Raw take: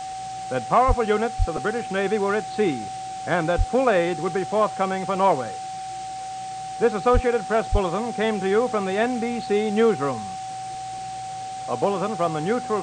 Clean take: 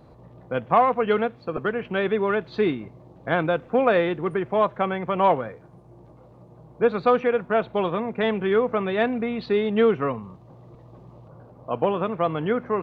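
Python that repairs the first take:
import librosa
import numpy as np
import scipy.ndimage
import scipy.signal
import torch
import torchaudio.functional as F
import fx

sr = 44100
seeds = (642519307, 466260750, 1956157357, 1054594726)

y = fx.notch(x, sr, hz=760.0, q=30.0)
y = fx.fix_deplosive(y, sr, at_s=(0.87, 1.38, 3.57, 7.13, 7.71))
y = fx.noise_reduce(y, sr, print_start_s=5.75, print_end_s=6.25, reduce_db=16.0)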